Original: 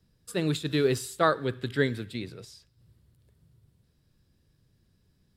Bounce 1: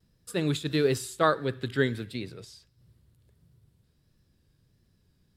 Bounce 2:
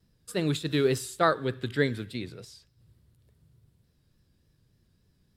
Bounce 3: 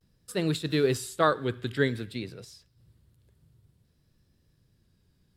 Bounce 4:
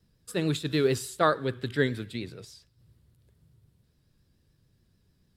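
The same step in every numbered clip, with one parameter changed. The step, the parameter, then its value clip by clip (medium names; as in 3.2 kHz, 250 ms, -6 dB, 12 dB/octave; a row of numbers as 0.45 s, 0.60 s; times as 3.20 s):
vibrato, rate: 1.5 Hz, 3.4 Hz, 0.53 Hz, 6.9 Hz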